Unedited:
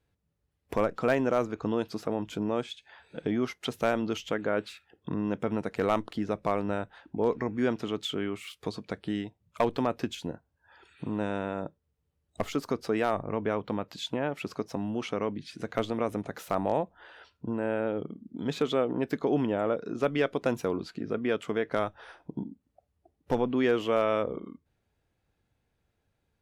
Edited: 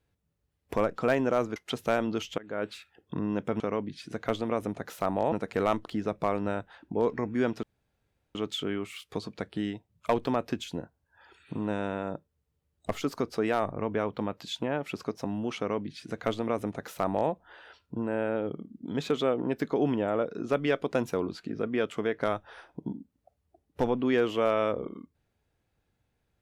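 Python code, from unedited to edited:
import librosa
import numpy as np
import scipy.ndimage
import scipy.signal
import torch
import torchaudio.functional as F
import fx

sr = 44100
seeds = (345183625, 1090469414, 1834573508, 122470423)

y = fx.edit(x, sr, fx.cut(start_s=1.56, length_s=1.95),
    fx.fade_in_from(start_s=4.33, length_s=0.35, floor_db=-23.0),
    fx.insert_room_tone(at_s=7.86, length_s=0.72),
    fx.duplicate(start_s=15.09, length_s=1.72, to_s=5.55), tone=tone)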